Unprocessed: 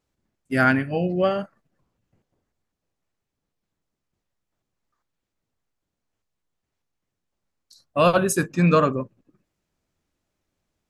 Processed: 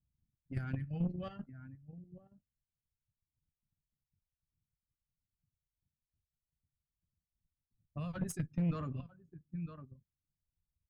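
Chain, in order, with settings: delay 954 ms -15.5 dB; reverb removal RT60 1.4 s; peak limiter -16.5 dBFS, peak gain reduction 9.5 dB; FFT filter 140 Hz 0 dB, 440 Hz -23 dB, 2.1 kHz -17 dB; level-controlled noise filter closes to 400 Hz, open at -33 dBFS; level held to a coarse grid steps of 11 dB; valve stage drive 35 dB, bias 0.45; peaking EQ 92 Hz +3 dB 2.8 oct; doubling 13 ms -14 dB; trim +5 dB

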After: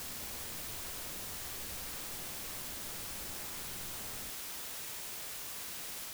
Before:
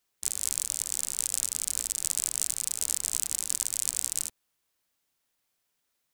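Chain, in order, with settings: reverse spectral sustain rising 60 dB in 1.03 s; Chebyshev low-pass 1.2 kHz, order 3; level rider gain up to 5.5 dB; peak limiter -42.5 dBFS, peak gain reduction 8.5 dB; compression 6:1, threshold -57 dBFS, peak gain reduction 10 dB; decimation with a swept rate 27×, swing 160% 1.9 Hz; harmony voices +5 st 0 dB; word length cut 8-bit, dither triangular; reverse echo 101 ms -5 dB; trim +4 dB

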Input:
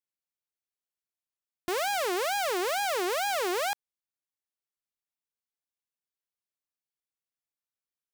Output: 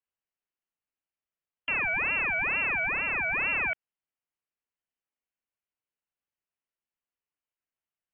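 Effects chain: 2.86–3.34 s: bass shelf 220 Hz -10 dB; frequency inversion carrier 3.1 kHz; trim +1.5 dB

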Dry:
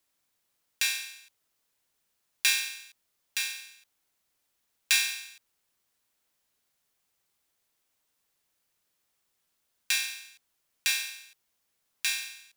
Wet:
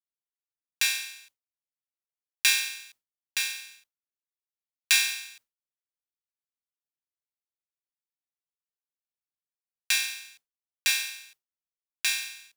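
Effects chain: expander -52 dBFS; trim +2.5 dB

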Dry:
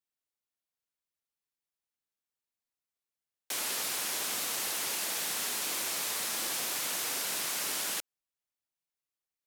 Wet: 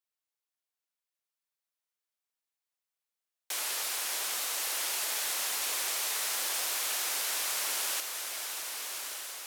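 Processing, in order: high-pass 510 Hz 12 dB/octave; echo that smears into a reverb 1220 ms, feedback 50%, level -6 dB; bit-crushed delay 601 ms, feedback 35%, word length 10-bit, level -11.5 dB

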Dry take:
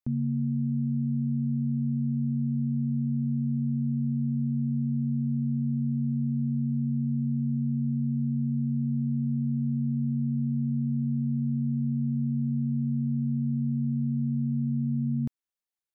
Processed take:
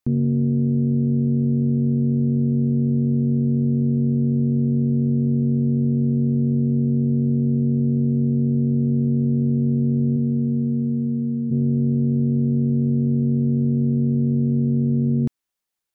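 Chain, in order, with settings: 10.16–11.50 s: high-pass 120 Hz -> 230 Hz 12 dB/octave; loudspeaker Doppler distortion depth 0.33 ms; trim +8.5 dB

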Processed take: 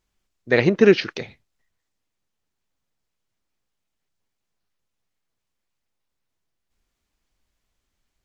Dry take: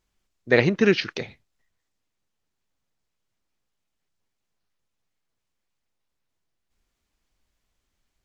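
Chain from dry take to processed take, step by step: 0.66–1.11 s: peaking EQ 500 Hz +7 dB 2 oct

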